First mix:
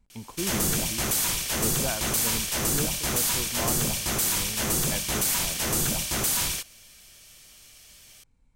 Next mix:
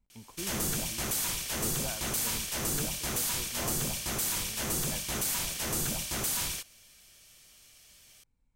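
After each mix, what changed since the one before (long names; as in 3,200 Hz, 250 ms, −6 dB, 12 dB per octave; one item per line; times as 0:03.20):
speech −9.5 dB
background −6.0 dB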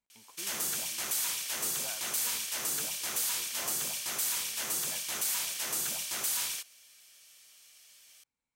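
master: add high-pass filter 1,100 Hz 6 dB per octave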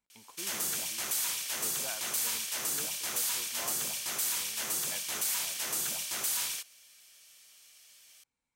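speech +3.5 dB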